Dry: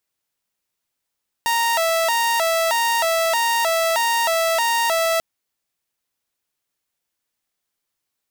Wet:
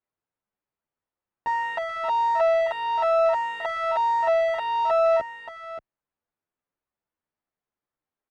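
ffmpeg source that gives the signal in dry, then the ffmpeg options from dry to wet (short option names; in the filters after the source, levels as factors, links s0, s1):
-f lavfi -i "aevalsrc='0.188*(2*mod((793.5*t+135.5/1.6*(0.5-abs(mod(1.6*t,1)-0.5))),1)-1)':d=3.74:s=44100"
-filter_complex "[0:a]lowpass=1400,asplit=2[s0][s1];[s1]aecho=0:1:578:0.355[s2];[s0][s2]amix=inputs=2:normalize=0,asplit=2[s3][s4];[s4]adelay=9.7,afreqshift=1.1[s5];[s3][s5]amix=inputs=2:normalize=1"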